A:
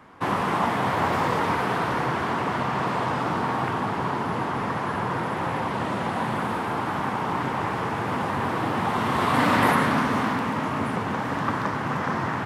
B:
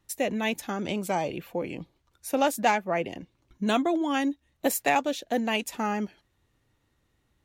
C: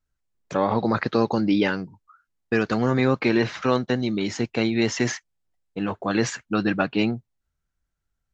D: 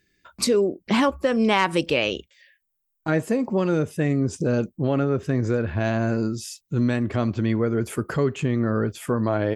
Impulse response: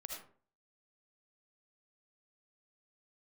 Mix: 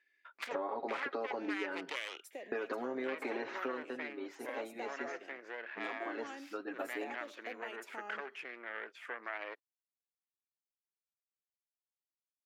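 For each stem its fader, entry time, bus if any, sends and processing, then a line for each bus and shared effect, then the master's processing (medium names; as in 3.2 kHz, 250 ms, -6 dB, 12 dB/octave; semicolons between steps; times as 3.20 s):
mute
-15.0 dB, 2.15 s, no bus, send -11.5 dB, compression, threshold -27 dBFS, peak gain reduction 9.5 dB
3.60 s -5 dB -> 3.93 s -16.5 dB, 0.00 s, bus A, send -17.5 dB, treble shelf 5.1 kHz -8.5 dB; comb 7.3 ms, depth 74%
-0.5 dB, 0.00 s, no bus, no send, self-modulated delay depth 0.53 ms; compression 3:1, threshold -24 dBFS, peak gain reduction 7.5 dB; band-pass filter 2 kHz, Q 1.8
bus A: 0.0 dB, peaking EQ 4.1 kHz -6 dB 1.5 oct; compression, threshold -28 dBFS, peak gain reduction 11.5 dB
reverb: on, RT60 0.45 s, pre-delay 35 ms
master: high-pass 320 Hz 24 dB/octave; treble shelf 3.4 kHz -8 dB; compression 6:1, threshold -34 dBFS, peak gain reduction 8.5 dB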